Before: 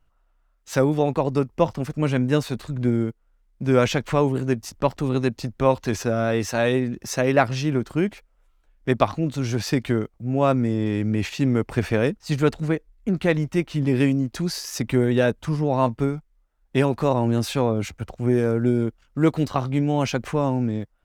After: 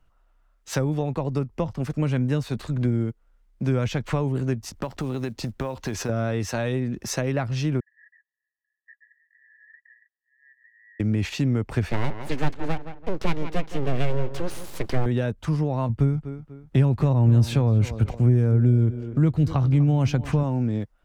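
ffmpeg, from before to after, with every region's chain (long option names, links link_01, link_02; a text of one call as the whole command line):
ffmpeg -i in.wav -filter_complex "[0:a]asettb=1/sr,asplit=3[link_01][link_02][link_03];[link_01]atrim=end=4.754[link_04];[link_02]atrim=start=4.75:end=6.09,asetpts=PTS-STARTPTS,afade=type=in:duration=0.004:curve=qsin,afade=type=out:start_time=1.336:duration=0.004:curve=qsin,acompressor=threshold=-25dB:ratio=6:attack=3.2:release=140:knee=1:detection=peak,acrusher=bits=8:mode=log:mix=0:aa=0.000001[link_05];[link_03]atrim=start=6.086[link_06];[link_04][link_05]acrossfade=duration=0.004:curve1=hsin:curve2=qsin[link_07];[link_07][link_06]acrossfade=duration=0.004:curve1=qsin:curve2=hsin,asettb=1/sr,asplit=3[link_08][link_09][link_10];[link_08]atrim=end=7.804[link_11];[link_09]atrim=start=7.8:end=11,asetpts=PTS-STARTPTS,afade=type=in:duration=0.004:curve=qsin,afade=type=out:start_time=3.196:duration=0.004:curve=qsin,asuperpass=centerf=1800:order=20:qfactor=6.4,acompressor=threshold=-58dB:ratio=2.5:attack=3.2:release=140:knee=1:detection=peak[link_12];[link_10]atrim=start=10.996[link_13];[link_11][link_12]acrossfade=duration=0.004:curve1=hsin:curve2=qsin[link_14];[link_14][link_13]acrossfade=duration=0.004:curve1=qsin:curve2=hsin,asettb=1/sr,asplit=3[link_15][link_16][link_17];[link_15]atrim=end=11.904[link_18];[link_16]atrim=start=11.9:end=15.06,asetpts=PTS-STARTPTS,afade=type=in:duration=0.004:curve=qsin,afade=type=out:start_time=3.156:duration=0.004:curve=qsin,bass=frequency=250:gain=-2,treble=frequency=4000:gain=-9,aeval=exprs='abs(val(0))':channel_layout=same,asplit=2[link_19][link_20];[link_20]adelay=168,lowpass=frequency=2800:poles=1,volume=-13.5dB,asplit=2[link_21][link_22];[link_22]adelay=168,lowpass=frequency=2800:poles=1,volume=0.34,asplit=2[link_23][link_24];[link_24]adelay=168,lowpass=frequency=2800:poles=1,volume=0.34[link_25];[link_19][link_21][link_23][link_25]amix=inputs=4:normalize=0,atrim=end_sample=139356[link_26];[link_17]atrim=start=15.056[link_27];[link_18][link_26]acrossfade=duration=0.004:curve1=hsin:curve2=qsin[link_28];[link_28][link_27]acrossfade=duration=0.004:curve1=qsin:curve2=hsin,asettb=1/sr,asplit=3[link_29][link_30][link_31];[link_29]atrim=end=15.894[link_32];[link_30]atrim=start=15.89:end=20.43,asetpts=PTS-STARTPTS,afade=type=in:duration=0.004:curve=qsin,afade=type=out:start_time=4.536:duration=0.004:curve=qsin,equalizer=frequency=77:width_type=o:width=2.6:gain=9,asplit=2[link_33][link_34];[link_34]adelay=245,lowpass=frequency=4000:poles=1,volume=-17dB,asplit=2[link_35][link_36];[link_36]adelay=245,lowpass=frequency=4000:poles=1,volume=0.35,asplit=2[link_37][link_38];[link_38]adelay=245,lowpass=frequency=4000:poles=1,volume=0.35[link_39];[link_33][link_35][link_37][link_39]amix=inputs=4:normalize=0,atrim=end_sample=200214[link_40];[link_31]atrim=start=20.426[link_41];[link_32][link_40]acrossfade=duration=0.004:curve1=hsin:curve2=qsin[link_42];[link_42][link_41]acrossfade=duration=0.004:curve1=qsin:curve2=hsin,highshelf=frequency=9000:gain=-4,acrossover=split=160[link_43][link_44];[link_44]acompressor=threshold=-28dB:ratio=6[link_45];[link_43][link_45]amix=inputs=2:normalize=0,volume=2.5dB" out.wav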